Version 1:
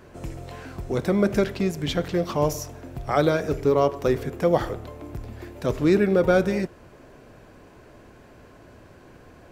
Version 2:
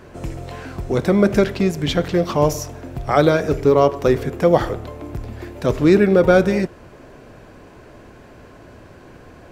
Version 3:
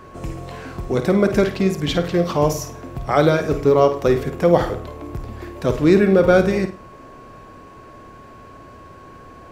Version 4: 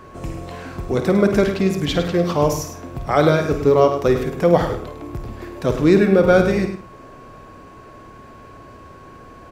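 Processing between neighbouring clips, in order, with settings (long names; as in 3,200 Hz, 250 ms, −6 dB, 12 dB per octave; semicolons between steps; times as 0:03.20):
high-shelf EQ 9,400 Hz −4.5 dB; level +6 dB
flutter between parallel walls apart 8.9 metres, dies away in 0.31 s; steady tone 1,100 Hz −42 dBFS; level −1 dB
single-tap delay 103 ms −9.5 dB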